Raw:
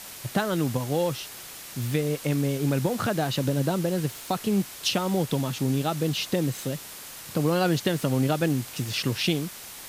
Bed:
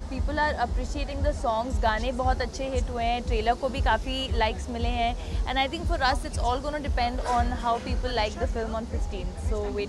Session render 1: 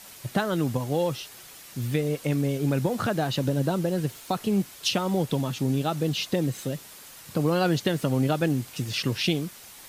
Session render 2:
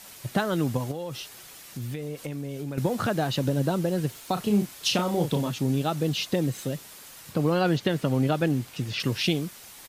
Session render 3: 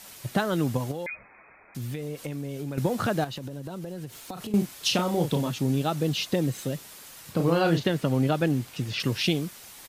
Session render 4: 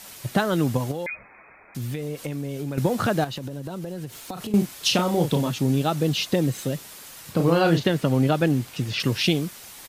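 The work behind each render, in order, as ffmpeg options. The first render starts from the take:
ffmpeg -i in.wav -af "afftdn=noise_reduction=6:noise_floor=-42" out.wav
ffmpeg -i in.wav -filter_complex "[0:a]asettb=1/sr,asplit=3[link_01][link_02][link_03];[link_01]atrim=end=0.914[link_04];[link_02]atrim=start=0.91:end=2.78,asetpts=PTS-STARTPTS,afade=type=in:duration=0.004:curve=qsin,afade=type=out:start_time=1.866:duration=0.004:curve=qsin,acompressor=threshold=-30dB:ratio=5:attack=3.2:release=140:knee=1:detection=peak[link_05];[link_03]atrim=start=2.776[link_06];[link_04][link_05]acrossfade=duration=0.004:curve1=hsin:curve2=qsin[link_07];[link_07][link_06]acrossfade=duration=0.004:curve1=qsin:curve2=hsin,asplit=3[link_08][link_09][link_10];[link_08]afade=type=out:start_time=4.36:duration=0.02[link_11];[link_09]asplit=2[link_12][link_13];[link_13]adelay=34,volume=-6dB[link_14];[link_12][link_14]amix=inputs=2:normalize=0,afade=type=in:start_time=4.36:duration=0.02,afade=type=out:start_time=5.49:duration=0.02[link_15];[link_10]afade=type=in:start_time=5.49:duration=0.02[link_16];[link_11][link_15][link_16]amix=inputs=3:normalize=0,asettb=1/sr,asplit=3[link_17][link_18][link_19];[link_17]atrim=end=7.314[link_20];[link_18]atrim=start=7.31:end=9,asetpts=PTS-STARTPTS,afade=type=in:duration=0.004:curve=qsin,afade=type=out:start_time=1.686:duration=0.004:curve=qsin,acrossover=split=4500[link_21][link_22];[link_22]acompressor=threshold=-47dB:ratio=4:attack=1:release=60[link_23];[link_21][link_23]amix=inputs=2:normalize=0[link_24];[link_19]atrim=start=8.996[link_25];[link_20][link_24]acrossfade=duration=0.004:curve1=hsin:curve2=qsin[link_26];[link_26][link_25]acrossfade=duration=0.004:curve1=qsin:curve2=hsin" out.wav
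ffmpeg -i in.wav -filter_complex "[0:a]asettb=1/sr,asplit=3[link_01][link_02][link_03];[link_01]atrim=end=1.064[link_04];[link_02]atrim=start=1.06:end=1.75,asetpts=PTS-STARTPTS,afade=type=in:duration=0.004:curve=qsin,afade=type=out:start_time=0.686:duration=0.004:curve=qsin,lowpass=frequency=2200:width_type=q:width=0.5098,lowpass=frequency=2200:width_type=q:width=0.6013,lowpass=frequency=2200:width_type=q:width=0.9,lowpass=frequency=2200:width_type=q:width=2.563,afreqshift=-2600[link_05];[link_03]atrim=start=1.746[link_06];[link_04][link_05]acrossfade=duration=0.004:curve1=hsin:curve2=qsin[link_07];[link_07][link_06]acrossfade=duration=0.004:curve1=qsin:curve2=hsin,asettb=1/sr,asplit=3[link_08][link_09][link_10];[link_08]atrim=end=3.244[link_11];[link_09]atrim=start=3.24:end=4.54,asetpts=PTS-STARTPTS,afade=type=in:duration=0.004:curve=qsin,afade=type=out:start_time=1.296:duration=0.004:curve=qsin,acompressor=threshold=-32dB:ratio=16:attack=3.2:release=140:knee=1:detection=peak[link_12];[link_10]atrim=start=4.536[link_13];[link_11][link_12]acrossfade=duration=0.004:curve1=hsin:curve2=qsin[link_14];[link_14][link_13]acrossfade=duration=0.004:curve1=qsin:curve2=hsin,asettb=1/sr,asplit=3[link_15][link_16][link_17];[link_15]atrim=end=7.334[link_18];[link_16]atrim=start=7.33:end=7.9,asetpts=PTS-STARTPTS,afade=type=in:duration=0.004:curve=qsin,afade=type=out:start_time=0.566:duration=0.004:curve=qsin,asplit=2[link_19][link_20];[link_20]adelay=36,volume=-6dB[link_21];[link_19][link_21]amix=inputs=2:normalize=0,atrim=end_sample=25137[link_22];[link_17]atrim=start=7.896[link_23];[link_18][link_22]acrossfade=duration=0.004:curve1=hsin:curve2=qsin[link_24];[link_24][link_23]acrossfade=duration=0.004:curve1=qsin:curve2=hsin" out.wav
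ffmpeg -i in.wav -af "volume=3.5dB" out.wav

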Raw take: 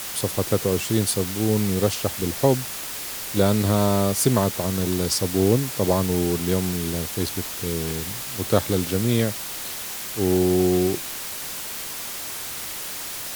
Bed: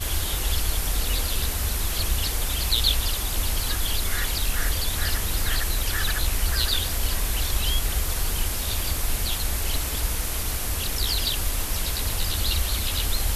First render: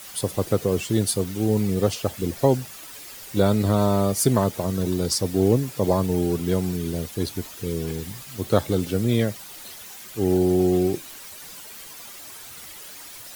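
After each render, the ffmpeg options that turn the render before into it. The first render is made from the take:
ffmpeg -i in.wav -af "afftdn=noise_reduction=11:noise_floor=-33" out.wav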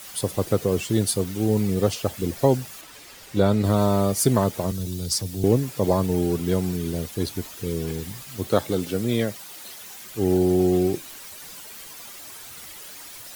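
ffmpeg -i in.wav -filter_complex "[0:a]asettb=1/sr,asplit=3[link_01][link_02][link_03];[link_01]atrim=end=2.814[link_04];[link_02]atrim=start=2.81:end=3.64,asetpts=PTS-STARTPTS,afade=type=in:duration=0.004:curve=qsin,afade=type=out:start_time=0.826:duration=0.004:curve=qsin,highshelf=frequency=7500:gain=-10[link_05];[link_03]atrim=start=3.636[link_06];[link_04][link_05]acrossfade=duration=0.004:curve1=hsin:curve2=qsin[link_07];[link_07][link_06]acrossfade=duration=0.004:curve1=qsin:curve2=hsin,asettb=1/sr,asplit=3[link_08][link_09][link_10];[link_08]atrim=end=4.714[link_11];[link_09]atrim=start=4.71:end=5.44,asetpts=PTS-STARTPTS,afade=type=in:duration=0.004:curve=qsin,afade=type=out:start_time=0.726:duration=0.004:curve=qsin,acrossover=split=160|3000[link_12][link_13][link_14];[link_13]acompressor=threshold=-40dB:ratio=3:attack=3.2:release=140:knee=2.83:detection=peak[link_15];[link_12][link_15][link_14]amix=inputs=3:normalize=0[link_16];[link_10]atrim=start=5.436[link_17];[link_11][link_16]acrossfade=duration=0.004:curve1=hsin:curve2=qsin[link_18];[link_18][link_17]acrossfade=duration=0.004:curve1=qsin:curve2=hsin,asettb=1/sr,asplit=3[link_19][link_20][link_21];[link_19]atrim=end=8.474[link_22];[link_20]atrim=start=8.47:end=9.84,asetpts=PTS-STARTPTS,afade=type=in:duration=0.004:curve=qsin,afade=type=out:start_time=1.366:duration=0.004:curve=qsin,highpass=frequency=170:poles=1[link_23];[link_21]atrim=start=9.836[link_24];[link_22][link_23]acrossfade=duration=0.004:curve1=hsin:curve2=qsin[link_25];[link_25][link_24]acrossfade=duration=0.004:curve1=qsin:curve2=hsin" out.wav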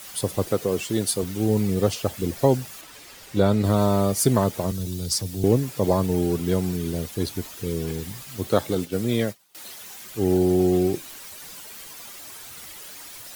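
ffmpeg -i in.wav -filter_complex "[0:a]asettb=1/sr,asplit=3[link_01][link_02][link_03];[link_01]atrim=end=0.474[link_04];[link_02]atrim=start=0.47:end=1.23,asetpts=PTS-STARTPTS,afade=type=in:duration=0.004:curve=qsin,afade=type=out:start_time=0.756:duration=0.004:curve=qsin,lowshelf=frequency=120:gain=-12[link_05];[link_03]atrim=start=1.226[link_06];[link_04][link_05]acrossfade=duration=0.004:curve1=hsin:curve2=qsin[link_07];[link_07][link_06]acrossfade=duration=0.004:curve1=qsin:curve2=hsin,asettb=1/sr,asplit=3[link_08][link_09][link_10];[link_08]atrim=end=8.754[link_11];[link_09]atrim=start=8.75:end=9.55,asetpts=PTS-STARTPTS,afade=type=in:duration=0.004:curve=qsin,afade=type=out:start_time=0.796:duration=0.004:curve=qsin,agate=range=-33dB:threshold=-28dB:ratio=3:release=100:detection=peak[link_12];[link_10]atrim=start=9.546[link_13];[link_11][link_12]acrossfade=duration=0.004:curve1=hsin:curve2=qsin[link_14];[link_14][link_13]acrossfade=duration=0.004:curve1=qsin:curve2=hsin" out.wav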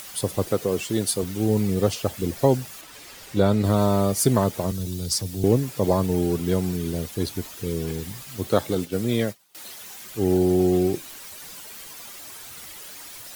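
ffmpeg -i in.wav -af "acompressor=mode=upward:threshold=-38dB:ratio=2.5" out.wav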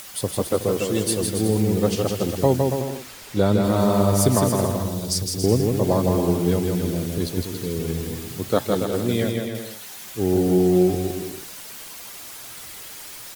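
ffmpeg -i in.wav -af "aecho=1:1:160|280|370|437.5|488.1:0.631|0.398|0.251|0.158|0.1" out.wav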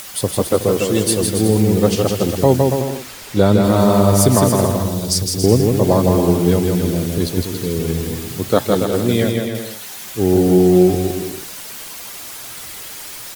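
ffmpeg -i in.wav -af "volume=6dB,alimiter=limit=-1dB:level=0:latency=1" out.wav

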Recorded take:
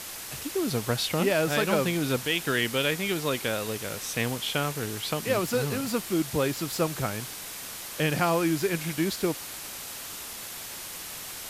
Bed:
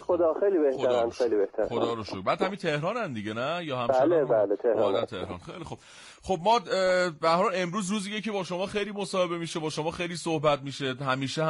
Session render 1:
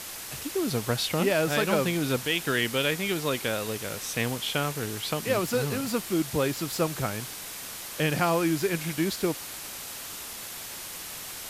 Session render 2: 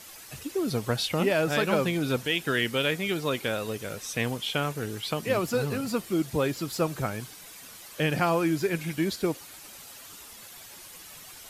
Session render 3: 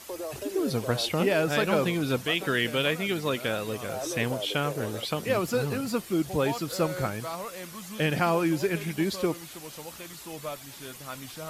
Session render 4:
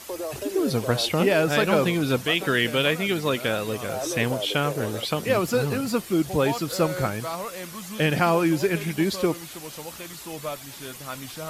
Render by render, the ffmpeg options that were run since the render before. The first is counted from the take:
ffmpeg -i in.wav -af anull out.wav
ffmpeg -i in.wav -af "afftdn=noise_reduction=10:noise_floor=-39" out.wav
ffmpeg -i in.wav -i bed.wav -filter_complex "[1:a]volume=-12.5dB[link_01];[0:a][link_01]amix=inputs=2:normalize=0" out.wav
ffmpeg -i in.wav -af "volume=4dB" out.wav

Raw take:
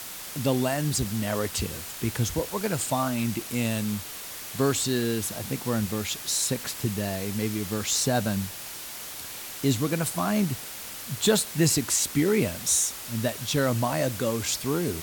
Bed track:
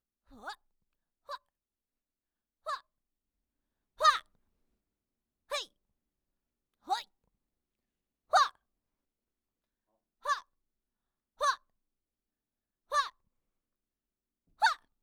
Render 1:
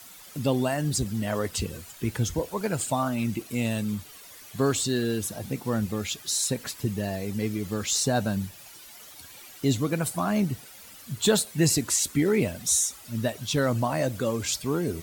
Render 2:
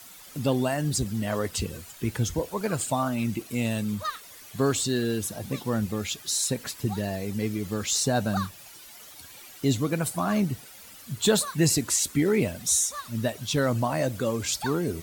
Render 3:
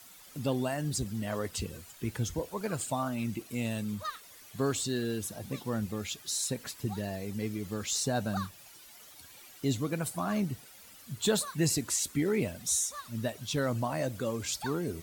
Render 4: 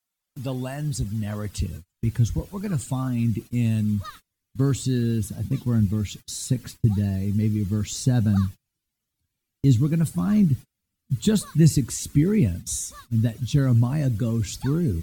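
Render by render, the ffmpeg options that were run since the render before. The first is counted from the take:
ffmpeg -i in.wav -af "afftdn=noise_reduction=12:noise_floor=-39" out.wav
ffmpeg -i in.wav -i bed.wav -filter_complex "[1:a]volume=-8dB[link_01];[0:a][link_01]amix=inputs=2:normalize=0" out.wav
ffmpeg -i in.wav -af "volume=-6dB" out.wav
ffmpeg -i in.wav -af "agate=range=-31dB:threshold=-43dB:ratio=16:detection=peak,asubboost=boost=9:cutoff=210" out.wav

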